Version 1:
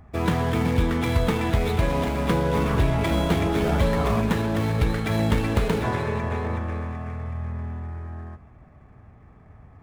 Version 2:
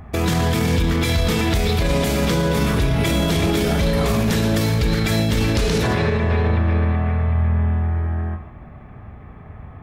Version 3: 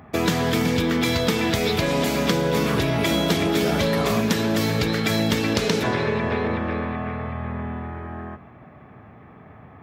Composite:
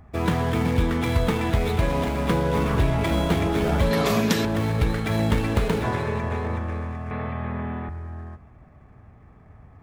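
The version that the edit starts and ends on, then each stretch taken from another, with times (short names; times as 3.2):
1
3.91–4.45 from 3
7.11–7.89 from 3
not used: 2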